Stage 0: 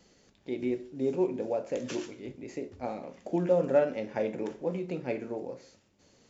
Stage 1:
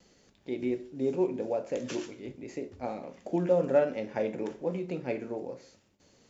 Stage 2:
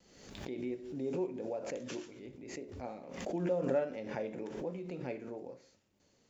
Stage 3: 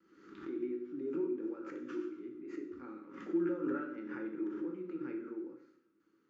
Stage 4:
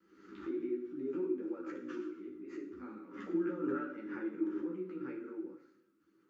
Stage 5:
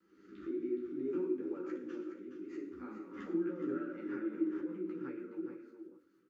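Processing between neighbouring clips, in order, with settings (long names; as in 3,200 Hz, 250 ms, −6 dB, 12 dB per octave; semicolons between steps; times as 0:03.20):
noise gate with hold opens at −59 dBFS
background raised ahead of every attack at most 57 dB per second; level −8.5 dB
pair of resonant band-passes 660 Hz, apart 2 octaves; coupled-rooms reverb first 0.64 s, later 2.3 s, from −26 dB, DRR 3 dB; level +7.5 dB
multi-voice chorus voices 6, 1.3 Hz, delay 13 ms, depth 3 ms; level +3.5 dB
rotating-speaker cabinet horn 0.6 Hz, later 6.3 Hz, at 0:03.73; on a send: single-tap delay 419 ms −8.5 dB; on the sum: level +1 dB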